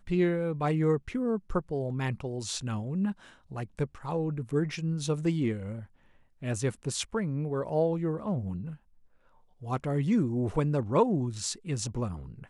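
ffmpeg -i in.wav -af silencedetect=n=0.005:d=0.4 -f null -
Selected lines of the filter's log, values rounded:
silence_start: 5.86
silence_end: 6.42 | silence_duration: 0.56
silence_start: 8.76
silence_end: 9.62 | silence_duration: 0.86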